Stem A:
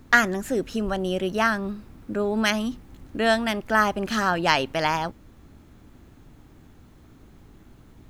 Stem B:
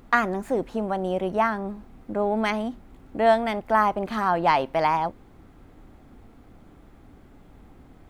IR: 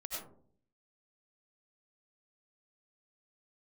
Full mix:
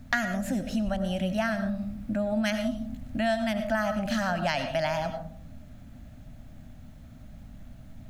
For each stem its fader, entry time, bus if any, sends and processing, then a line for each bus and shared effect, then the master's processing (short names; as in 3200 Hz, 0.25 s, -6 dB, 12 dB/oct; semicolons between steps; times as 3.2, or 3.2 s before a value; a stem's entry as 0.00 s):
+2.0 dB, 0.00 s, send -6 dB, EQ curve 250 Hz 0 dB, 390 Hz -28 dB, 610 Hz +3 dB, 990 Hz -13 dB, 1600 Hz -5 dB
-16.0 dB, 0.00 s, polarity flipped, no send, dry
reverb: on, RT60 0.55 s, pre-delay 55 ms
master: compressor 3:1, threshold -26 dBFS, peak gain reduction 10.5 dB